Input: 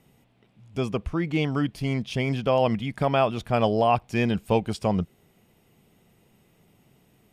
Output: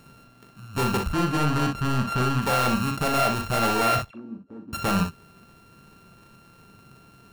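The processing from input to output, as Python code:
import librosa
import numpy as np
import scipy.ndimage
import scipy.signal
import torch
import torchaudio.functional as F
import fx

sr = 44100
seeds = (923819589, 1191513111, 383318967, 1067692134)

p1 = np.r_[np.sort(x[:len(x) // 32 * 32].reshape(-1, 32), axis=1).ravel(), x[len(x) // 32 * 32:]]
p2 = fx.high_shelf(p1, sr, hz=4400.0, db=-10.5, at=(1.12, 2.42))
p3 = fx.rider(p2, sr, range_db=10, speed_s=0.5)
p4 = p2 + (p3 * 10.0 ** (0.0 / 20.0))
p5 = 10.0 ** (-21.0 / 20.0) * np.tanh(p4 / 10.0 ** (-21.0 / 20.0))
p6 = fx.auto_wah(p5, sr, base_hz=270.0, top_hz=3800.0, q=9.4, full_db=-26.0, direction='down', at=(4.05, 4.73))
y = p6 + fx.room_early_taps(p6, sr, ms=(40, 61), db=(-7.0, -7.5), dry=0)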